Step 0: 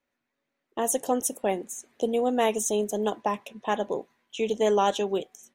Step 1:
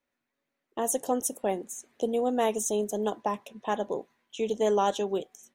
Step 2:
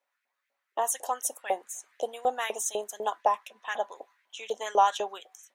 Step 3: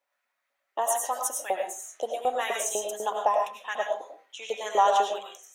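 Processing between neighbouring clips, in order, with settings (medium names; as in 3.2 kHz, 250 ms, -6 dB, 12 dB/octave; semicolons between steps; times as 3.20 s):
dynamic bell 2.4 kHz, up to -5 dB, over -47 dBFS, Q 1.6; trim -2 dB
LFO high-pass saw up 4 Hz 580–2100 Hz
reverberation RT60 0.35 s, pre-delay 60 ms, DRR 1 dB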